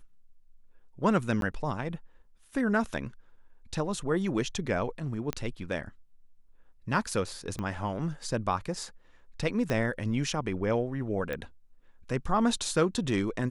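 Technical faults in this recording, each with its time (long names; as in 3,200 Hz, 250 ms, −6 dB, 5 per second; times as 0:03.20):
0:01.41–0:01.42: drop-out 12 ms
0:05.33: click −16 dBFS
0:07.59: click −22 dBFS
0:09.70: click −17 dBFS
0:11.33: click −21 dBFS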